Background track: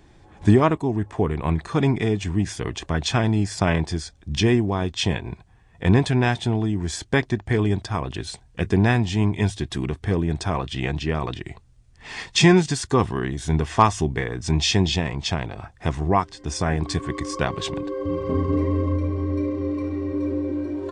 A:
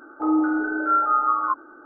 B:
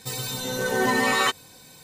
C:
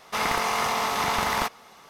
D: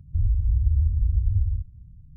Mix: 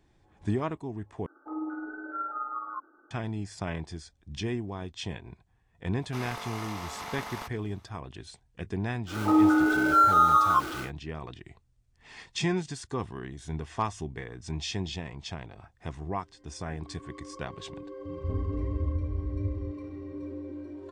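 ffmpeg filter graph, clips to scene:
-filter_complex "[1:a]asplit=2[a][b];[0:a]volume=-13.5dB[c];[a]tremolo=f=19:d=0.36[d];[b]aeval=exprs='val(0)+0.5*0.0237*sgn(val(0))':c=same[e];[4:a]highpass=73[f];[c]asplit=2[g][h];[g]atrim=end=1.264[i];[d]atrim=end=1.85,asetpts=PTS-STARTPTS,volume=-13dB[j];[h]atrim=start=3.106[k];[3:a]atrim=end=1.89,asetpts=PTS-STARTPTS,volume=-14dB,afade=t=in:d=0.004:c=hsin,afade=t=out:st=1.886:d=0.004:c=hsin,adelay=6000[l];[e]atrim=end=1.85,asetpts=PTS-STARTPTS,volume=-0.5dB,afade=t=in:d=0.1,afade=t=out:st=1.75:d=0.1,adelay=399546S[m];[f]atrim=end=2.16,asetpts=PTS-STARTPTS,volume=-6.5dB,afade=t=in:d=0.004:c=hsin,afade=t=out:st=2.156:d=0.004:c=hsin,adelay=18090[n];[i][j]acrossfade=d=0.004:c1=hsin:c2=hsin[o];[o][k]acrossfade=d=0.004:c1=hsin:c2=hsin[p];[p][l][m][n]amix=inputs=4:normalize=0"

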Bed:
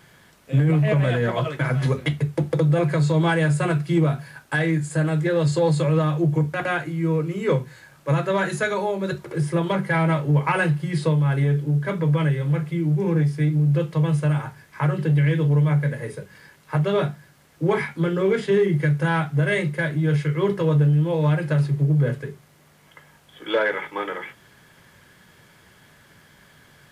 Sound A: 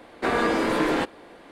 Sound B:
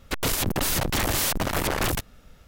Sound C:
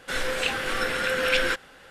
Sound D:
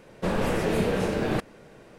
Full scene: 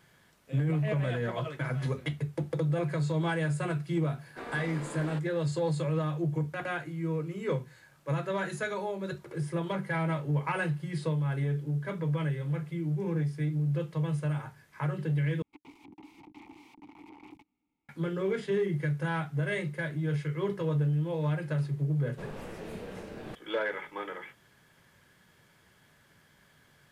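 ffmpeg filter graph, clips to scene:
-filter_complex "[0:a]volume=-10dB[a];[2:a]asplit=3[b][c][d];[b]bandpass=f=300:t=q:w=8,volume=0dB[e];[c]bandpass=f=870:t=q:w=8,volume=-6dB[f];[d]bandpass=f=2.24k:t=q:w=8,volume=-9dB[g];[e][f][g]amix=inputs=3:normalize=0[h];[a]asplit=2[i][j];[i]atrim=end=15.424[k];[h]atrim=end=2.47,asetpts=PTS-STARTPTS,volume=-13dB[l];[j]atrim=start=17.886[m];[1:a]atrim=end=1.51,asetpts=PTS-STARTPTS,volume=-18dB,afade=t=in:d=0.004:c=hsin,afade=t=out:st=1.506:d=0.004:c=hsin,adelay=4140[n];[4:a]atrim=end=1.98,asetpts=PTS-STARTPTS,volume=-16.5dB,afade=t=in:d=0.004:c=hsin,afade=t=out:st=1.976:d=0.004:c=hsin,adelay=21950[o];[k][l]acrossfade=d=0.004:c1=hsin:c2=hsin[p];[p][m]acrossfade=d=0.004:c1=hsin:c2=hsin[q];[q][n][o]amix=inputs=3:normalize=0"

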